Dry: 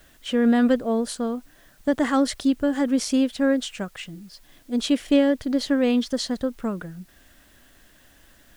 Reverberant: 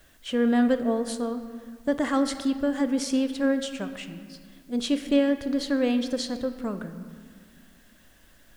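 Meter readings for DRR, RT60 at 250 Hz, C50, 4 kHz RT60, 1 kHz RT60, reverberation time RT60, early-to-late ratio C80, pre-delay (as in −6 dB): 9.0 dB, 2.6 s, 10.5 dB, 1.2 s, 1.8 s, 1.9 s, 11.5 dB, 6 ms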